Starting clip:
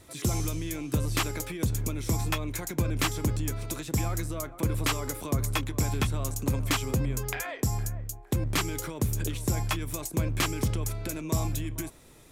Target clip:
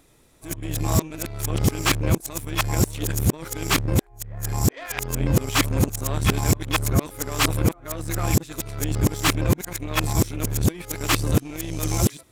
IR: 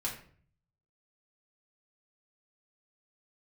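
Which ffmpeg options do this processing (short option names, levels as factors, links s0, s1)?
-af "areverse,aeval=exprs='0.168*(cos(1*acos(clip(val(0)/0.168,-1,1)))-cos(1*PI/2))+0.0168*(cos(7*acos(clip(val(0)/0.168,-1,1)))-cos(7*PI/2))':c=same,volume=2.24"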